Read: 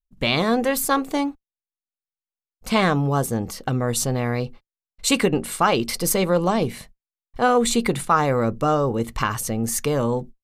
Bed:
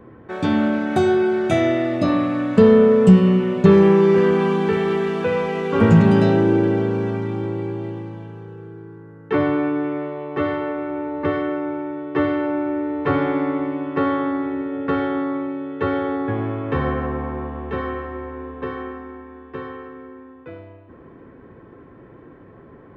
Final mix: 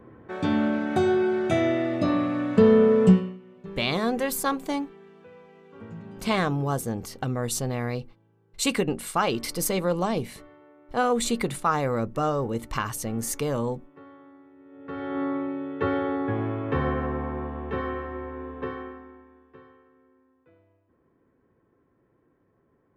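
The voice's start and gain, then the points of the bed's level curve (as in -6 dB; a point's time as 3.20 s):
3.55 s, -5.5 dB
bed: 3.11 s -5 dB
3.39 s -28.5 dB
14.55 s -28.5 dB
15.23 s -4 dB
18.64 s -4 dB
19.84 s -22.5 dB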